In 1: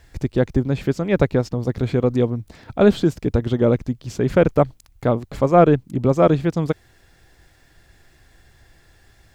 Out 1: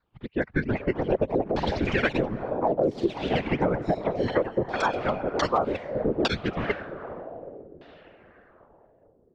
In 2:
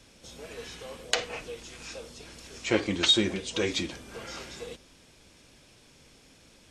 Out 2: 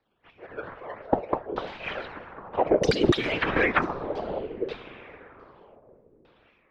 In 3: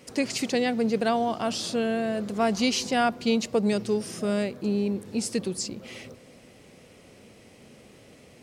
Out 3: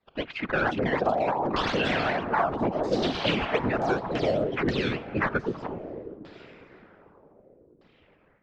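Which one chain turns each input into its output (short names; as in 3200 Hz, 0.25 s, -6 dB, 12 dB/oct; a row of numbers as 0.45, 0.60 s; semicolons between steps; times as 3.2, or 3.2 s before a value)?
per-bin expansion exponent 1.5; tone controls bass -11 dB, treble 0 dB; decimation with a swept rate 13×, swing 160% 2.1 Hz; AGC gain up to 14 dB; diffused feedback echo 0.458 s, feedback 47%, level -15.5 dB; dynamic EQ 500 Hz, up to -5 dB, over -25 dBFS, Q 1; whisperiser; LFO low-pass saw down 0.64 Hz 340–4300 Hz; echoes that change speed 0.433 s, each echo +4 st, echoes 2, each echo -6 dB; low-pass opened by the level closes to 3000 Hz, open at -7.5 dBFS; compressor 10:1, threshold -16 dBFS; match loudness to -27 LUFS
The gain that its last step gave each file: -4.0, -0.5, -4.5 dB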